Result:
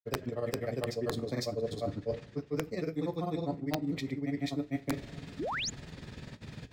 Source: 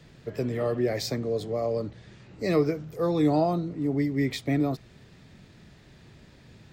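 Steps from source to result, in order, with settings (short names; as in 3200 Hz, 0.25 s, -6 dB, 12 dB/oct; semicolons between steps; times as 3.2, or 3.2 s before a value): grains 71 ms, spray 0.406 s; reverb, pre-delay 3 ms, DRR 9.5 dB; painted sound rise, 5.39–5.7, 250–7400 Hz -42 dBFS; reverse; compressor 10:1, threshold -39 dBFS, peak gain reduction 20 dB; reverse; wrapped overs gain 30.5 dB; gain +8.5 dB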